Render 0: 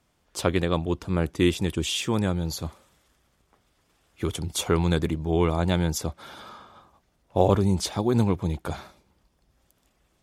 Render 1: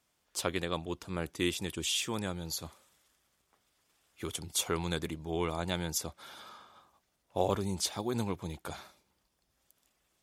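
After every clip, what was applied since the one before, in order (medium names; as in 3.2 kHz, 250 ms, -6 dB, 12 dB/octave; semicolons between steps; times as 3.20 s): tilt EQ +2 dB/octave; trim -7.5 dB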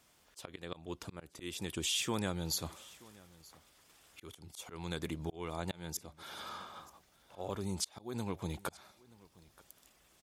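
slow attack 725 ms; compression 2:1, threshold -46 dBFS, peak gain reduction 9 dB; delay 928 ms -22.5 dB; trim +8.5 dB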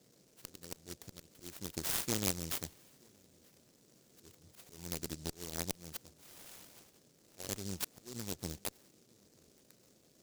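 Chebyshev shaper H 3 -12 dB, 7 -36 dB, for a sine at -19.5 dBFS; band noise 110–620 Hz -75 dBFS; delay time shaken by noise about 5.8 kHz, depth 0.29 ms; trim +8 dB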